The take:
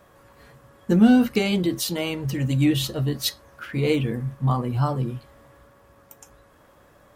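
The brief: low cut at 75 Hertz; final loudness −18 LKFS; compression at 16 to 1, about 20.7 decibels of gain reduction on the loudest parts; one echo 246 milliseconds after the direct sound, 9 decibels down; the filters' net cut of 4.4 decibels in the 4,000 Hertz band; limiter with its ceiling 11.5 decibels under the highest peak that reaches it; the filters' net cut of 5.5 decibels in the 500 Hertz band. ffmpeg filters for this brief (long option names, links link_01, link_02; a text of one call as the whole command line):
ffmpeg -i in.wav -af "highpass=75,equalizer=frequency=500:width_type=o:gain=-7,equalizer=frequency=4000:width_type=o:gain=-5.5,acompressor=threshold=-33dB:ratio=16,alimiter=level_in=11dB:limit=-24dB:level=0:latency=1,volume=-11dB,aecho=1:1:246:0.355,volume=25dB" out.wav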